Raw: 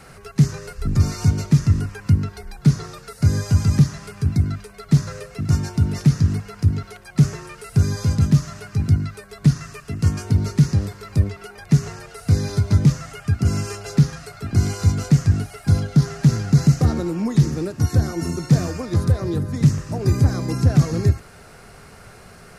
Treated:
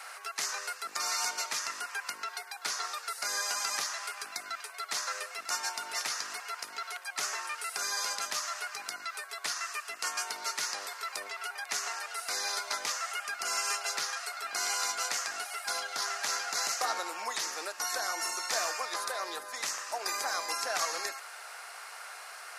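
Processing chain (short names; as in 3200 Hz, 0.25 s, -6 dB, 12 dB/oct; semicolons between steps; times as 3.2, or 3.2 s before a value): HPF 770 Hz 24 dB/oct; gain +3 dB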